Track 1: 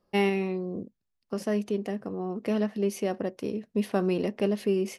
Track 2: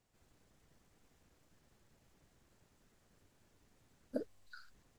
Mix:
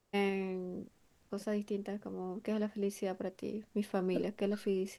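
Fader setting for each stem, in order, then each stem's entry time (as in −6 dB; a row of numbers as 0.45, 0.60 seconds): −8.0, +1.0 decibels; 0.00, 0.00 seconds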